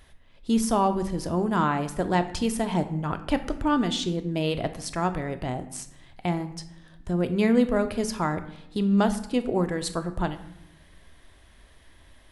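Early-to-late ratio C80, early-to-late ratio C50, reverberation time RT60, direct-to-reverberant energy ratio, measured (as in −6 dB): 15.5 dB, 13.0 dB, 0.85 s, 8.5 dB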